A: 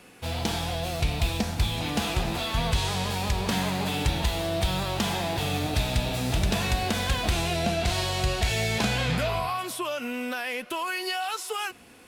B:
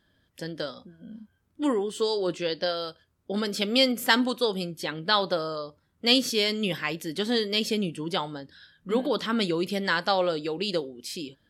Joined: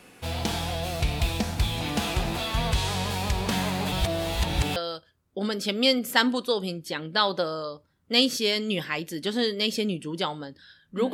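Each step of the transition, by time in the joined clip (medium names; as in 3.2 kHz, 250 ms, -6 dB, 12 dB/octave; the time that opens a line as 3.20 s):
A
3.92–4.76 s: reverse
4.76 s: go over to B from 2.69 s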